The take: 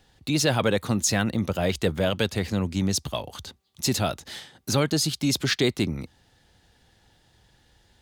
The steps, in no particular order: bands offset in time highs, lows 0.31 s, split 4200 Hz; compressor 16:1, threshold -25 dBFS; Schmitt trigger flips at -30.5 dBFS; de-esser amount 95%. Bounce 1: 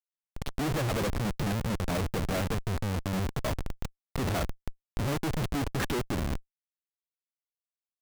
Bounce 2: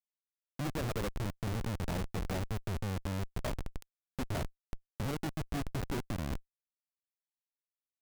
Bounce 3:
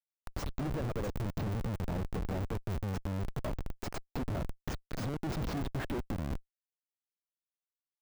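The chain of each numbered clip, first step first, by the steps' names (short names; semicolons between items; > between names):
bands offset in time > de-esser > Schmitt trigger > compressor; compressor > de-esser > bands offset in time > Schmitt trigger; bands offset in time > compressor > Schmitt trigger > de-esser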